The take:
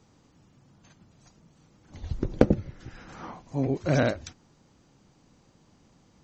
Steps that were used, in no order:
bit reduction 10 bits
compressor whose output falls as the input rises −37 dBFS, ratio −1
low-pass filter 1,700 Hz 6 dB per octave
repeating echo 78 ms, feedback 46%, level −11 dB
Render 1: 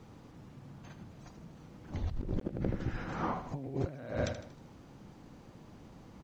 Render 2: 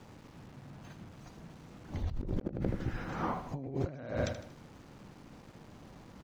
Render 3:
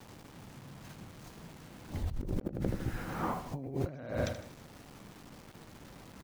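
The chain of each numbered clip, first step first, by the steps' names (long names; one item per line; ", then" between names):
repeating echo, then compressor whose output falls as the input rises, then bit reduction, then low-pass filter
repeating echo, then bit reduction, then low-pass filter, then compressor whose output falls as the input rises
low-pass filter, then bit reduction, then repeating echo, then compressor whose output falls as the input rises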